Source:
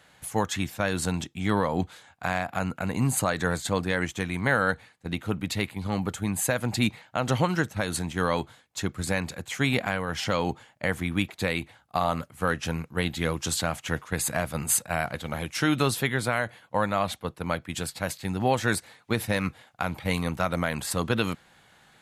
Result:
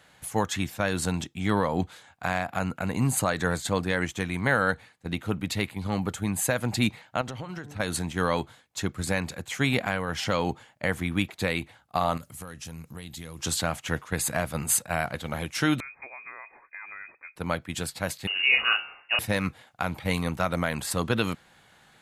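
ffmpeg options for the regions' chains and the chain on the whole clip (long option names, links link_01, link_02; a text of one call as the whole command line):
ffmpeg -i in.wav -filter_complex "[0:a]asettb=1/sr,asplit=3[link_01][link_02][link_03];[link_01]atrim=end=7.214[link_04];[link_02]atrim=start=7.21:end=7.8,asetpts=PTS-STARTPTS,afade=type=in:duration=0.004:curve=qsin,afade=type=out:start_time=0.586:duration=0.004:curve=qsin,highshelf=frequency=7900:gain=-8.5,bandreject=frequency=145.9:width_type=h:width=4,bandreject=frequency=291.8:width_type=h:width=4,bandreject=frequency=437.7:width_type=h:width=4,bandreject=frequency=583.6:width_type=h:width=4,bandreject=frequency=729.5:width_type=h:width=4,bandreject=frequency=875.4:width_type=h:width=4,bandreject=frequency=1021.3:width_type=h:width=4,acompressor=threshold=-32dB:ratio=16:attack=3.2:release=140:knee=1:detection=peak[link_05];[link_03]atrim=start=7.796[link_06];[link_04][link_05]acrossfade=duration=0.004:curve1=hsin:curve2=qsin[link_07];[link_07][link_06]acrossfade=duration=0.004:curve1=qsin:curve2=hsin,asettb=1/sr,asplit=3[link_08][link_09][link_10];[link_08]atrim=end=12.174[link_11];[link_09]atrim=start=12.17:end=13.39,asetpts=PTS-STARTPTS,afade=type=in:duration=0.004:curve=qsin,afade=type=out:start_time=1.216:duration=0.004:curve=qsin,bass=frequency=250:gain=6,treble=frequency=4000:gain=13,acompressor=threshold=-38dB:ratio=5:attack=3.2:release=140:knee=1:detection=peak,bandreject=frequency=1500:width=23[link_12];[link_10]atrim=start=13.386[link_13];[link_11][link_12]acrossfade=duration=0.004:curve1=hsin:curve2=qsin[link_14];[link_14][link_13]acrossfade=duration=0.004:curve1=qsin:curve2=hsin,asettb=1/sr,asplit=3[link_15][link_16][link_17];[link_15]atrim=end=15.804[link_18];[link_16]atrim=start=15.8:end=17.36,asetpts=PTS-STARTPTS,afade=type=in:duration=0.004:curve=qsin,afade=type=out:start_time=1.556:duration=0.004:curve=qsin,bandreject=frequency=360:width=5.7,acompressor=threshold=-43dB:ratio=3:attack=3.2:release=140:knee=1:detection=peak,lowpass=frequency=2200:width_type=q:width=0.5098,lowpass=frequency=2200:width_type=q:width=0.6013,lowpass=frequency=2200:width_type=q:width=0.9,lowpass=frequency=2200:width_type=q:width=2.563,afreqshift=-2600[link_19];[link_17]atrim=start=17.356[link_20];[link_18][link_19]acrossfade=duration=0.004:curve1=hsin:curve2=qsin[link_21];[link_21][link_20]acrossfade=duration=0.004:curve1=qsin:curve2=hsin,asettb=1/sr,asplit=3[link_22][link_23][link_24];[link_22]atrim=end=18.274[link_25];[link_23]atrim=start=18.27:end=19.19,asetpts=PTS-STARTPTS,afade=type=in:duration=0.004:curve=qsin,afade=type=out:start_time=0.916:duration=0.004:curve=qsin,asplit=2[link_26][link_27];[link_27]adelay=36,volume=-2.5dB[link_28];[link_26][link_28]amix=inputs=2:normalize=0,atrim=end_sample=40572,bandreject=frequency=72.01:width_type=h:width=4,bandreject=frequency=144.02:width_type=h:width=4,bandreject=frequency=216.03:width_type=h:width=4,bandreject=frequency=288.04:width_type=h:width=4,bandreject=frequency=360.05:width_type=h:width=4,bandreject=frequency=432.06:width_type=h:width=4,bandreject=frequency=504.07:width_type=h:width=4,bandreject=frequency=576.08:width_type=h:width=4,bandreject=frequency=648.09:width_type=h:width=4,bandreject=frequency=720.1:width_type=h:width=4,bandreject=frequency=792.11:width_type=h:width=4,bandreject=frequency=864.12:width_type=h:width=4,bandreject=frequency=936.13:width_type=h:width=4,bandreject=frequency=1008.14:width_type=h:width=4,bandreject=frequency=1080.15:width_type=h:width=4,bandreject=frequency=1152.16:width_type=h:width=4,bandreject=frequency=1224.17:width_type=h:width=4,bandreject=frequency=1296.18:width_type=h:width=4,bandreject=frequency=1368.19:width_type=h:width=4,bandreject=frequency=1440.2:width_type=h:width=4,bandreject=frequency=1512.21:width_type=h:width=4,bandreject=frequency=1584.22:width_type=h:width=4,bandreject=frequency=1656.23:width_type=h:width=4,bandreject=frequency=1728.24:width_type=h:width=4,bandreject=frequency=1800.25:width_type=h:width=4,bandreject=frequency=1872.26:width_type=h:width=4,bandreject=frequency=1944.27:width_type=h:width=4,bandreject=frequency=2016.28:width_type=h:width=4,bandreject=frequency=2088.29:width_type=h:width=4,bandreject=frequency=2160.3:width_type=h:width=4,bandreject=frequency=2232.31:width_type=h:width=4,bandreject=frequency=2304.32:width_type=h:width=4,bandreject=frequency=2376.33:width_type=h:width=4,bandreject=frequency=2448.34:width_type=h:width=4,bandreject=frequency=2520.35:width_type=h:width=4,bandreject=frequency=2592.36:width_type=h:width=4,bandreject=frequency=2664.37:width_type=h:width=4,lowpass=frequency=2600:width_type=q:width=0.5098,lowpass=frequency=2600:width_type=q:width=0.6013,lowpass=frequency=2600:width_type=q:width=0.9,lowpass=frequency=2600:width_type=q:width=2.563,afreqshift=-3000[link_29];[link_24]atrim=start=19.186[link_30];[link_25][link_29]acrossfade=duration=0.004:curve1=hsin:curve2=qsin[link_31];[link_31][link_30]acrossfade=duration=0.004:curve1=qsin:curve2=hsin" out.wav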